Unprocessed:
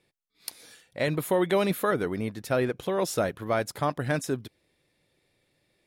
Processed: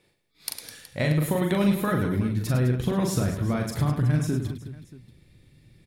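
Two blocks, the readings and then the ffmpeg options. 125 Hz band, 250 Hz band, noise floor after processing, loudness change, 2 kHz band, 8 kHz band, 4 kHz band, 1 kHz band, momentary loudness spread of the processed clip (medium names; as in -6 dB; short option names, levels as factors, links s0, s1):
+11.0 dB, +6.0 dB, -66 dBFS, +2.5 dB, -1.0 dB, +2.0 dB, +1.0 dB, -3.0 dB, 15 LU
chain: -filter_complex "[0:a]asubboost=boost=10:cutoff=190,acompressor=threshold=0.0447:ratio=6,asplit=2[s0][s1];[s1]aecho=0:1:40|104|206.4|370.2|632.4:0.631|0.398|0.251|0.158|0.1[s2];[s0][s2]amix=inputs=2:normalize=0,volume=1.68"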